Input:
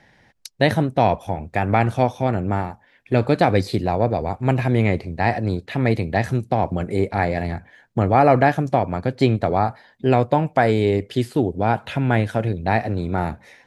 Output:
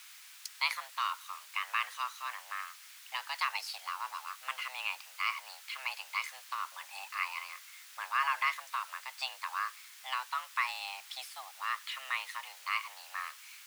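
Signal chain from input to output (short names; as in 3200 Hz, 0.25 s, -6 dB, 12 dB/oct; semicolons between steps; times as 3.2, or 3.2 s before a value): added noise pink -43 dBFS; frequency shift +390 Hz; Bessel high-pass 2000 Hz, order 6; gain -5.5 dB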